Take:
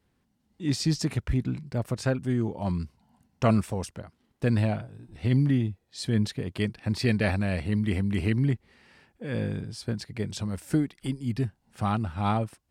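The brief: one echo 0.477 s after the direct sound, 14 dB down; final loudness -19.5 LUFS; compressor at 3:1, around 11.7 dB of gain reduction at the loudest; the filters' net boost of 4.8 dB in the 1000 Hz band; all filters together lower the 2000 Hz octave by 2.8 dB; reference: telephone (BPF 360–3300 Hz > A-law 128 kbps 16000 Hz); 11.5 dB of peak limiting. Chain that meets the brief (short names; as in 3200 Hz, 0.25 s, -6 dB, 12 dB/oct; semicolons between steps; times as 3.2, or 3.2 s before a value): bell 1000 Hz +8 dB; bell 2000 Hz -5.5 dB; compressor 3:1, threshold -32 dBFS; limiter -31 dBFS; BPF 360–3300 Hz; echo 0.477 s -14 dB; gain +28 dB; A-law 128 kbps 16000 Hz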